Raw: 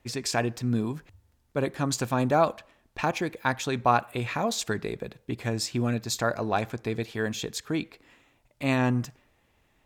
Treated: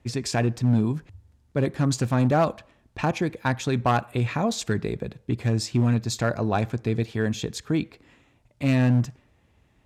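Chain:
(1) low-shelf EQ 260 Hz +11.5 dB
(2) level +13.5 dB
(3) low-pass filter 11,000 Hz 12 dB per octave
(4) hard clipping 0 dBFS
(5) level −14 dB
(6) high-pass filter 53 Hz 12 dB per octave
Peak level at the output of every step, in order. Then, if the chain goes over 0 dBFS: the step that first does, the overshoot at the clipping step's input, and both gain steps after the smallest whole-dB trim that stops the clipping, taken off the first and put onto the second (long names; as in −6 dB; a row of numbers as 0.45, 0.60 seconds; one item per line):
−6.5, +7.0, +7.0, 0.0, −14.0, −11.5 dBFS
step 2, 7.0 dB
step 2 +6.5 dB, step 5 −7 dB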